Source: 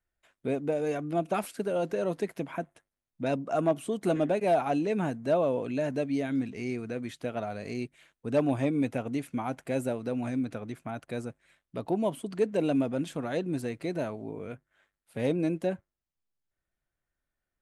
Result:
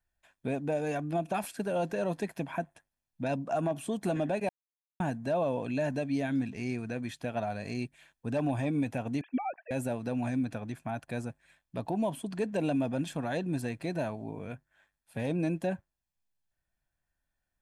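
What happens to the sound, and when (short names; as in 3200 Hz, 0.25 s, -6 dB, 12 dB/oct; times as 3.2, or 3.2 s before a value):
4.49–5 mute
9.21–9.71 sine-wave speech
whole clip: comb 1.2 ms, depth 44%; limiter -22 dBFS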